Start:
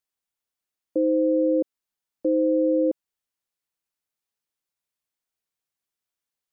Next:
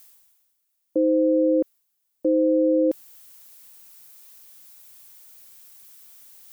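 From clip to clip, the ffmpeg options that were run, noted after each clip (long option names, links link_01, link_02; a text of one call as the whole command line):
ffmpeg -i in.wav -af "areverse,acompressor=mode=upward:threshold=-42dB:ratio=2.5,areverse,aemphasis=mode=production:type=50kf,volume=1.5dB" out.wav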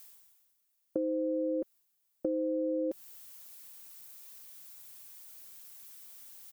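ffmpeg -i in.wav -af "aecho=1:1:5.1:0.37,acompressor=threshold=-26dB:ratio=6,volume=-3dB" out.wav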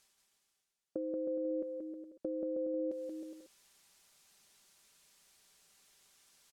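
ffmpeg -i in.wav -af "lowpass=7100,aecho=1:1:180|315|416.2|492.2|549.1:0.631|0.398|0.251|0.158|0.1,volume=-6.5dB" out.wav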